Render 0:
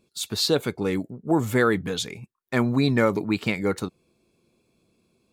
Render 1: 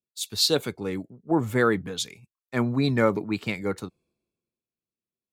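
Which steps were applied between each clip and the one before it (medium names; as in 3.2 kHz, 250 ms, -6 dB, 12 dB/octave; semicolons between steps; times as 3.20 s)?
three bands expanded up and down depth 70%; trim -3 dB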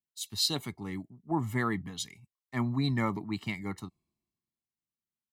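comb 1 ms, depth 80%; trim -8 dB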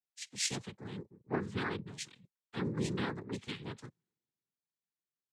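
noise-vocoded speech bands 6; trim -5.5 dB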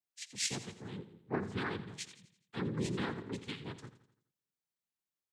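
feedback delay 84 ms, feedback 47%, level -13.5 dB; trim -1 dB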